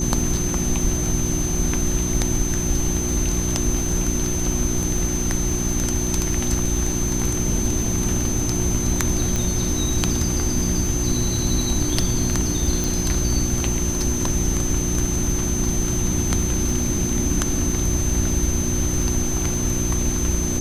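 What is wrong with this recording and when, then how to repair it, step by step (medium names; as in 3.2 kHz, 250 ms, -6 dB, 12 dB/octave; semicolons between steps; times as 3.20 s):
crackle 21 per s -28 dBFS
hum 60 Hz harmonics 6 -26 dBFS
whine 6.2 kHz -26 dBFS
9.36 s: pop
12.84 s: pop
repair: de-click; band-stop 6.2 kHz, Q 30; de-hum 60 Hz, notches 6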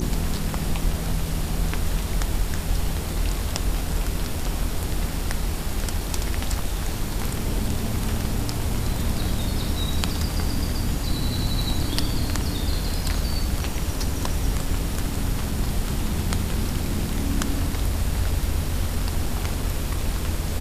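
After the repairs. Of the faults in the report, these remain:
nothing left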